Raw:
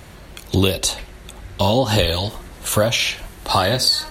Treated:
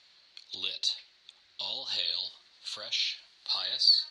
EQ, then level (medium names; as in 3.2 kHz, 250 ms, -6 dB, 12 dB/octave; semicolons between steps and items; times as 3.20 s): band-pass filter 4.3 kHz, Q 4.5; distance through air 98 m; 0.0 dB